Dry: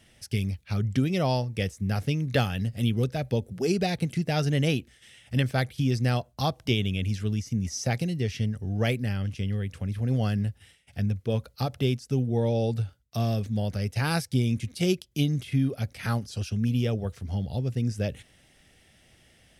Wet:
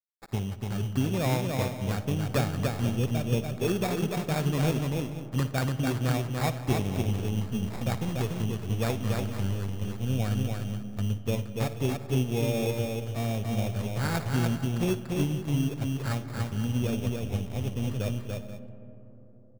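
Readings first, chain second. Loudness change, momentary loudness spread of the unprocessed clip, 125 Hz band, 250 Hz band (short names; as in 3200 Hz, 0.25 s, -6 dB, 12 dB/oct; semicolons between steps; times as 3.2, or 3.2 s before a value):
-1.5 dB, 5 LU, -1.5 dB, -1.0 dB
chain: sample-rate reducer 3000 Hz, jitter 0%; crossover distortion -43.5 dBFS; on a send: tapped delay 57/290/388/485 ms -16/-3.5/-19/-14 dB; on the sum: digital reverb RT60 4.2 s, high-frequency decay 0.25×, pre-delay 25 ms, DRR 14 dB; gain -2.5 dB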